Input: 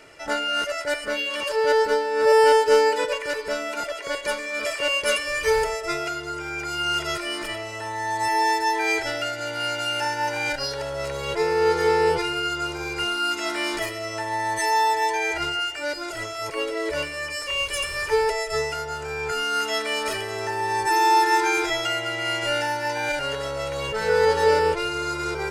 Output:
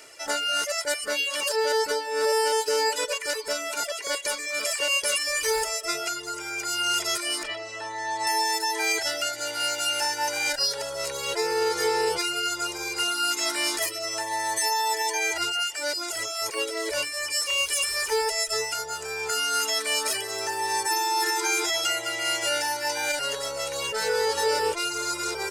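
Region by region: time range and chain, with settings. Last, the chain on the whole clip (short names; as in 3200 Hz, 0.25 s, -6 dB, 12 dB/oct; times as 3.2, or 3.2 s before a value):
7.43–8.27 LPF 4300 Hz + de-hum 176 Hz, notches 38
whole clip: reverb removal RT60 0.54 s; tone controls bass -11 dB, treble +13 dB; limiter -14 dBFS; gain -1.5 dB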